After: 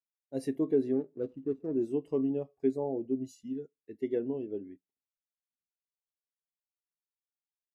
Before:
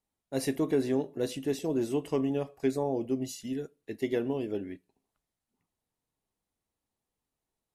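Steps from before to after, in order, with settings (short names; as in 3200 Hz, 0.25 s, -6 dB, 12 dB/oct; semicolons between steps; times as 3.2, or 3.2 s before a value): 0.93–1.76 median filter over 41 samples; spectral expander 1.5:1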